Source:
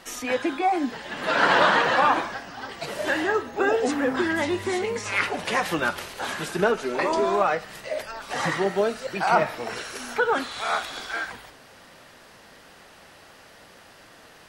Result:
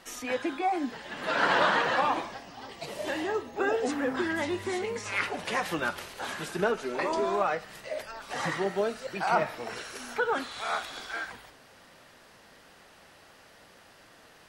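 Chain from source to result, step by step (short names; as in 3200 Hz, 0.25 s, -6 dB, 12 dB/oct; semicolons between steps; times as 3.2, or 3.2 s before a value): 2.01–3.56 bell 1500 Hz -9 dB 0.47 oct; gain -5.5 dB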